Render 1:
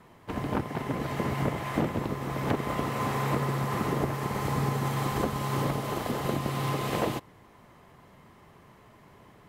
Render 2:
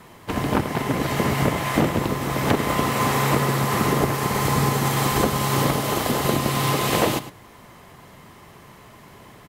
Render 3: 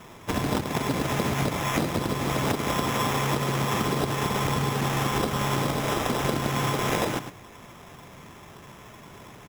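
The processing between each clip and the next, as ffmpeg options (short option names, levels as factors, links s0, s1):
-filter_complex "[0:a]highshelf=f=2800:g=8,asplit=2[s0][s1];[s1]adelay=105,volume=0.224,highshelf=f=4000:g=-2.36[s2];[s0][s2]amix=inputs=2:normalize=0,volume=2.37"
-af "acompressor=threshold=0.0794:ratio=6,acrusher=samples=10:mix=1:aa=0.000001"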